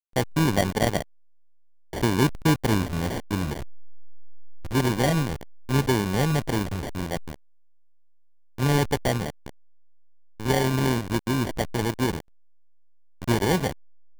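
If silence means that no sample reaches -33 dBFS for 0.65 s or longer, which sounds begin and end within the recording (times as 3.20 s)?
1.93–7.34 s
8.58–9.49 s
10.40–12.20 s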